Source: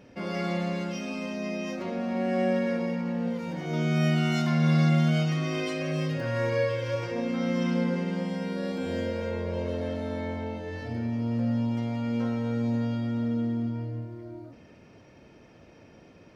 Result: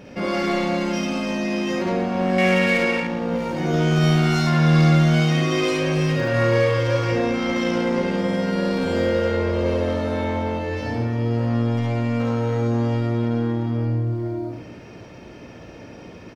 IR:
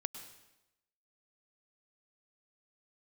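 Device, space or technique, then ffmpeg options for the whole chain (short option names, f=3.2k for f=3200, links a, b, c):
saturated reverb return: -filter_complex "[0:a]asettb=1/sr,asplit=3[a][b][c];[a]atrim=end=2.384[d];[b]atrim=start=2.38:end=3,asetpts=PTS-STARTPTS,afade=t=in:d=0.004:c=qsin,afade=t=out:st=0.616:d=0.004:c=qsin,equalizer=f=2.4k:t=o:w=1.1:g=14.5[e];[c]atrim=start=2.996[f];[d][e]acrossfade=d=0.004:c1=hsin:c2=qsin[g];[g][f]acrossfade=d=0.004:c1=qsin:c2=hsin,asplit=2[h][i];[1:a]atrim=start_sample=2205[j];[i][j]afir=irnorm=-1:irlink=0,asoftclip=type=tanh:threshold=-33.5dB,volume=3dB[k];[h][k]amix=inputs=2:normalize=0,aecho=1:1:54|71:0.596|0.668,volume=3dB"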